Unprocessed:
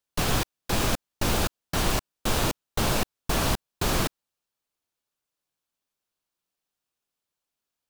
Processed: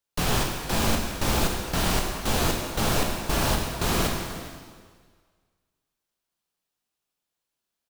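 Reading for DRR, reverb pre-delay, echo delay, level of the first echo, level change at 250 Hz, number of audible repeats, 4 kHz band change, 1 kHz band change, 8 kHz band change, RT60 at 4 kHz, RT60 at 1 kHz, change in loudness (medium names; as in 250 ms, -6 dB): 0.5 dB, 8 ms, 409 ms, -17.5 dB, +2.0 dB, 1, +1.5 dB, +2.0 dB, +1.5 dB, 1.6 s, 1.7 s, +1.5 dB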